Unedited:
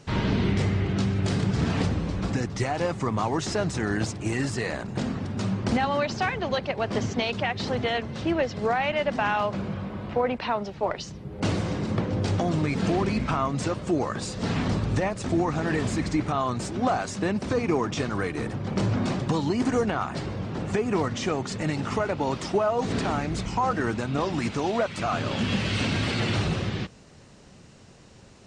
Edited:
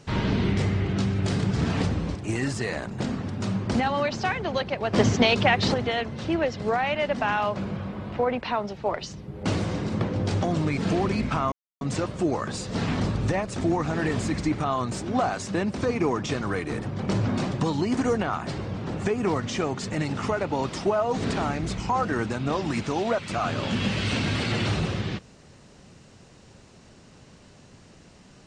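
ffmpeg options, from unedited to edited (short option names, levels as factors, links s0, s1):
-filter_complex "[0:a]asplit=5[s0][s1][s2][s3][s4];[s0]atrim=end=2.152[s5];[s1]atrim=start=4.118:end=6.902[s6];[s2]atrim=start=6.898:end=7.712,asetpts=PTS-STARTPTS,volume=2.24[s7];[s3]atrim=start=7.708:end=13.49,asetpts=PTS-STARTPTS,afade=t=out:st=5.778:d=0.004:c=hsin,apad=pad_dur=0.29[s8];[s4]atrim=start=13.49,asetpts=PTS-STARTPTS,afade=t=in:d=0.004:c=hsin[s9];[s5][s6]acrossfade=d=0.004:c1=hsin:c2=hsin[s10];[s10][s7]acrossfade=d=0.004:c1=hsin:c2=hsin[s11];[s8][s9]concat=n=2:v=0:a=1[s12];[s11][s12]acrossfade=d=0.004:c1=hsin:c2=hsin"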